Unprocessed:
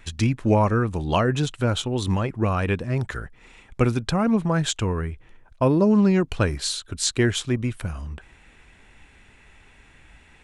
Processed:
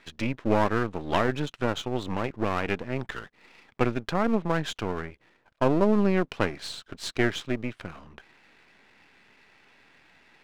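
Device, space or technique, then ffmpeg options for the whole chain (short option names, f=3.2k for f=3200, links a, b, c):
crystal radio: -af "highpass=210,lowpass=2.6k,aeval=exprs='if(lt(val(0),0),0.251*val(0),val(0))':c=same,equalizer=f=6.5k:w=0.41:g=4.5"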